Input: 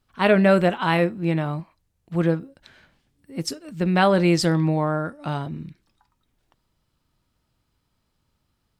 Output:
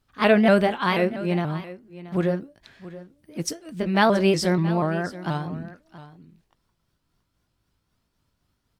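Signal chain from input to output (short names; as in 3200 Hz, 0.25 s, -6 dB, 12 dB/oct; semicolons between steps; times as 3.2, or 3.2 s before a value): repeated pitch sweeps +2.5 st, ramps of 0.241 s; echo 0.677 s -16.5 dB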